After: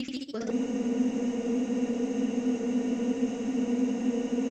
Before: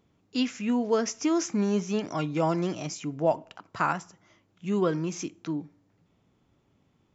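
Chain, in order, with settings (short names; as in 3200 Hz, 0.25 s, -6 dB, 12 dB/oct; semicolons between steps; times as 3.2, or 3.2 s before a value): slices in reverse order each 0.134 s, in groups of 4; bell 960 Hz -12 dB 0.86 oct; in parallel at +2 dB: compressor 20:1, threshold -36 dBFS, peak gain reduction 15 dB; on the sum: granular stretch 0.63×, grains 60 ms; hard clip -19 dBFS, distortion -23 dB; on a send at -12 dB: reverb RT60 0.20 s, pre-delay 3 ms; on the sum: echoes that change speed 82 ms, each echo +1 st, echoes 2; echo 0.109 s -23.5 dB; spectral freeze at 0.53, 3.97 s; gain -6.5 dB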